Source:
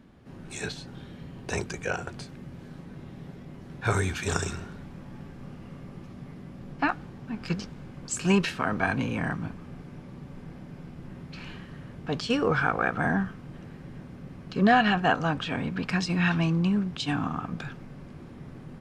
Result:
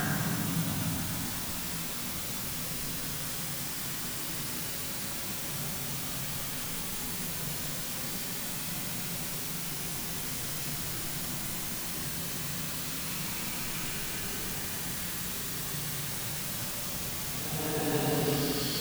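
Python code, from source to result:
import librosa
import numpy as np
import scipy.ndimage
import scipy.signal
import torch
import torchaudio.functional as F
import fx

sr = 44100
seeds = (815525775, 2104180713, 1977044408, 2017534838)

y = fx.quant_dither(x, sr, seeds[0], bits=6, dither='triangular')
y = fx.paulstretch(y, sr, seeds[1], factor=6.5, window_s=0.25, from_s=9.33)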